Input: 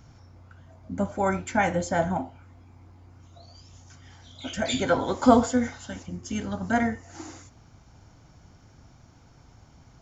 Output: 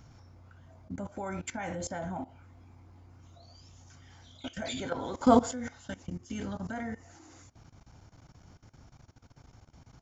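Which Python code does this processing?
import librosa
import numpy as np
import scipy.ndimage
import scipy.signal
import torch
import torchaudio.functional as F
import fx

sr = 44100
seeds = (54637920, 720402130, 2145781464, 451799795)

y = fx.level_steps(x, sr, step_db=18)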